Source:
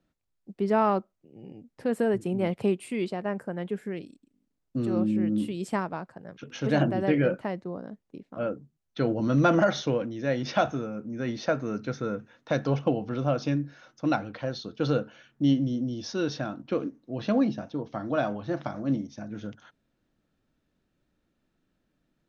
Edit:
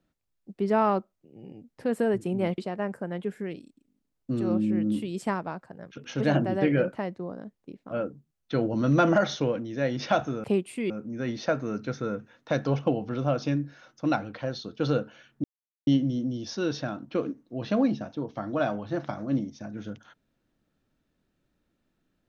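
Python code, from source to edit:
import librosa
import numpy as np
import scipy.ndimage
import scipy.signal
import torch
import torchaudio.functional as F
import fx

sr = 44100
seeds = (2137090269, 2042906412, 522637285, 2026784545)

y = fx.edit(x, sr, fx.move(start_s=2.58, length_s=0.46, to_s=10.9),
    fx.insert_silence(at_s=15.44, length_s=0.43), tone=tone)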